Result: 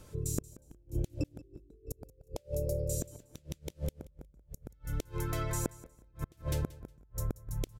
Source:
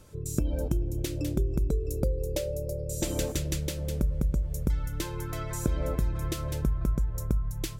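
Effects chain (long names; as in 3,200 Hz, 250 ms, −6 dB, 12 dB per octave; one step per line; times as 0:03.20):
gate with flip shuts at −21 dBFS, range −35 dB
0:01.44–0:01.88: hollow resonant body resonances 310/3,800 Hz, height 14 dB, ringing for 25 ms
on a send: repeating echo 181 ms, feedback 23%, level −19 dB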